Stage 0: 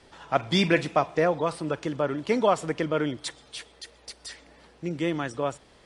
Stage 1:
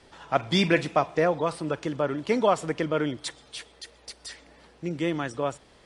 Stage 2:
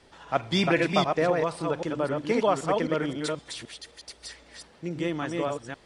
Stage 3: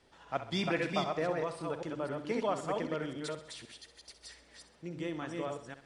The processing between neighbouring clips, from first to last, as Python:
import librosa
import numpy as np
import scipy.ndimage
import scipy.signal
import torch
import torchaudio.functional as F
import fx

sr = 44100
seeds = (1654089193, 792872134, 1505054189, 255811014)

y1 = x
y2 = fx.reverse_delay(y1, sr, ms=261, wet_db=-3)
y2 = y2 * 10.0 ** (-2.0 / 20.0)
y3 = fx.echo_feedback(y2, sr, ms=65, feedback_pct=48, wet_db=-12.0)
y3 = y3 * 10.0 ** (-9.0 / 20.0)